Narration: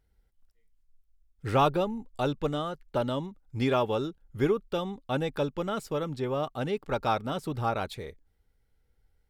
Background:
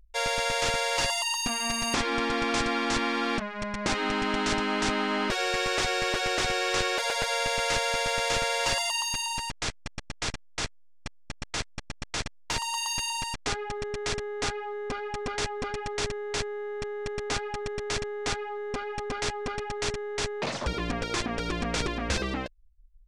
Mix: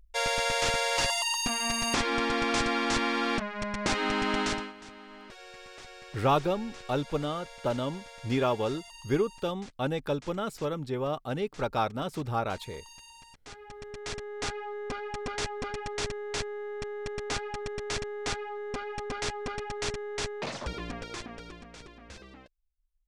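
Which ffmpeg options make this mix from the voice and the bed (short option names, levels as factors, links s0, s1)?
-filter_complex "[0:a]adelay=4700,volume=0.891[s0];[1:a]volume=7.5,afade=t=out:st=4.41:d=0.32:silence=0.1,afade=t=in:st=13.41:d=1.22:silence=0.125893,afade=t=out:st=20.14:d=1.54:silence=0.141254[s1];[s0][s1]amix=inputs=2:normalize=0"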